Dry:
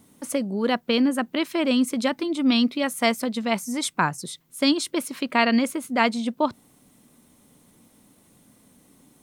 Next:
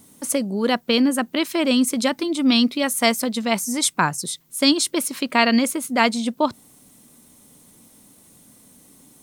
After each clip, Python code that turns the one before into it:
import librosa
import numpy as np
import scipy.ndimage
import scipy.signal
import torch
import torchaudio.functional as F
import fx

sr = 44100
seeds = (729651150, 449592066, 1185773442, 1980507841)

y = fx.bass_treble(x, sr, bass_db=0, treble_db=7)
y = y * 10.0 ** (2.5 / 20.0)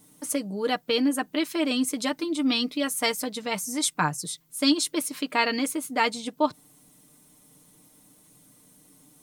y = x + 0.65 * np.pad(x, (int(6.6 * sr / 1000.0), 0))[:len(x)]
y = y * 10.0 ** (-7.0 / 20.0)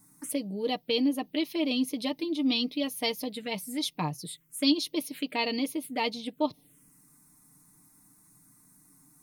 y = fx.env_phaser(x, sr, low_hz=520.0, high_hz=1500.0, full_db=-25.0)
y = y * 10.0 ** (-2.0 / 20.0)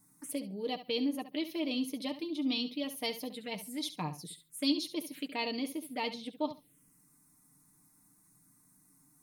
y = fx.echo_feedback(x, sr, ms=69, feedback_pct=16, wet_db=-12.5)
y = y * 10.0 ** (-6.0 / 20.0)